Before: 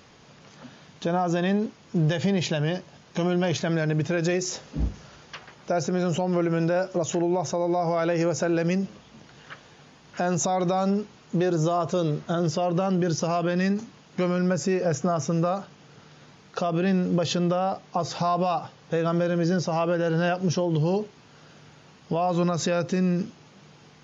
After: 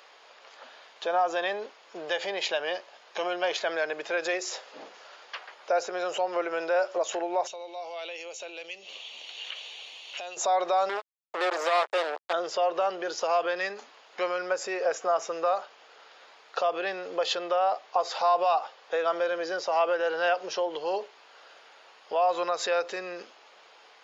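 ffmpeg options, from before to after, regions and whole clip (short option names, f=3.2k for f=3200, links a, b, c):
-filter_complex "[0:a]asettb=1/sr,asplit=3[a][b][c];[a]atrim=end=7.474[d];[b]atrim=start=7.47:end=10.37,asetpts=PTS-STARTPTS,afade=t=in:d=0.004:c=qsin,afade=t=out:st=2.896:d=0.004:c=qsin,highshelf=f=2.1k:t=q:w=3:g=10,acompressor=threshold=-33dB:ratio=10:attack=3.2:release=140:knee=1:detection=peak,asuperstop=centerf=5000:order=4:qfactor=7.4[e];[c]atrim=start=10.366[f];[d][e]acrossfade=d=0.004:c1=hsin:c2=qsin[g];[g][f]acrossfade=d=0.004:c1=qsin:c2=hsin,asettb=1/sr,asplit=3[h][i][j];[h]atrim=end=10.894[k];[i]atrim=start=10.89:end=12.33,asetpts=PTS-STARTPTS,afade=t=in:d=0.004:c=qsin,afade=t=out:st=1.436:d=0.004:c=qsin,aeval=exprs='sgn(val(0))*max(abs(val(0))-0.00708,0)':c=same,acrusher=bits=3:mix=0:aa=0.5,highpass=290,lowpass=5.8k[l];[j]atrim=start=12.326[m];[k][l]acrossfade=d=0.004:c1=hsin:c2=qsin[n];[n][m]acrossfade=d=0.004:c1=qsin:c2=hsin,highpass=f=520:w=0.5412,highpass=f=520:w=1.3066,equalizer=f=6.1k:w=3.2:g=-9.5,volume=2dB"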